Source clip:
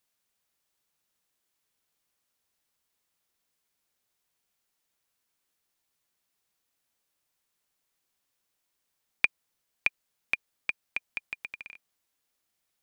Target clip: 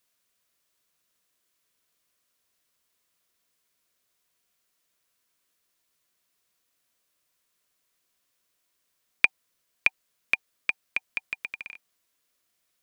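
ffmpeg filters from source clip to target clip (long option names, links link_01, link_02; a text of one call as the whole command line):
ffmpeg -i in.wav -af "asuperstop=centerf=830:order=12:qfactor=6.1,lowshelf=frequency=200:gain=-3.5,volume=4.5dB" out.wav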